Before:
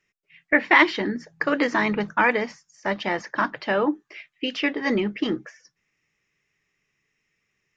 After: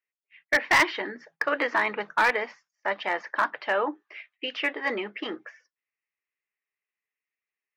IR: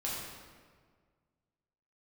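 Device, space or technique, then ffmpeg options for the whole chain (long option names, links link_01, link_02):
walkie-talkie: -af "highpass=560,lowpass=3000,asoftclip=type=hard:threshold=-15dB,agate=range=-16dB:threshold=-57dB:ratio=16:detection=peak"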